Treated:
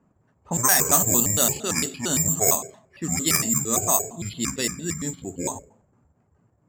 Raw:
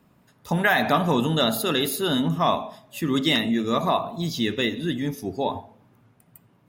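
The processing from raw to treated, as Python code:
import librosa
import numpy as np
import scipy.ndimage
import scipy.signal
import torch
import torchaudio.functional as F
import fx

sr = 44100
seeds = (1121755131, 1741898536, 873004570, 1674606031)

y = fx.pitch_trill(x, sr, semitones=-8.0, every_ms=114)
y = (np.kron(scipy.signal.resample_poly(y, 1, 6), np.eye(6)[0]) * 6)[:len(y)]
y = fx.env_lowpass(y, sr, base_hz=1400.0, full_db=-8.5)
y = F.gain(torch.from_numpy(y), -4.0).numpy()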